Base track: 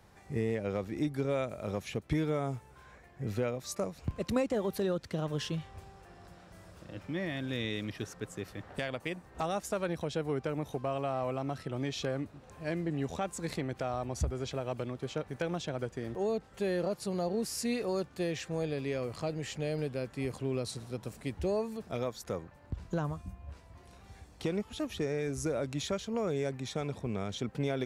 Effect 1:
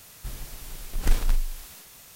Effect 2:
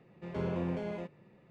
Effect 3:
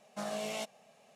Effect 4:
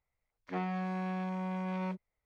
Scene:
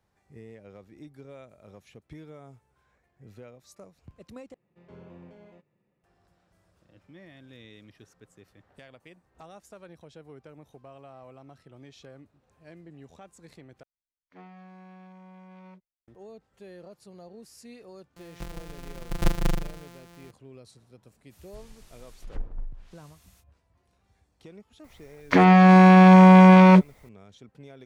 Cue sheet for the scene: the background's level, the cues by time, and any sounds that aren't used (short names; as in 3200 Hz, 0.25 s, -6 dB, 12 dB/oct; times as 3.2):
base track -14.5 dB
4.54 replace with 2 -14.5 dB
13.83 replace with 4 -13.5 dB + expander -59 dBFS, range -10 dB
18.16 add 1 -3 dB + sample sorter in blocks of 256 samples
21.29 add 1 -12 dB, fades 0.05 s + treble ducked by the level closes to 730 Hz, closed at -17.5 dBFS
24.84 add 4 -6 dB + maximiser +35 dB
not used: 3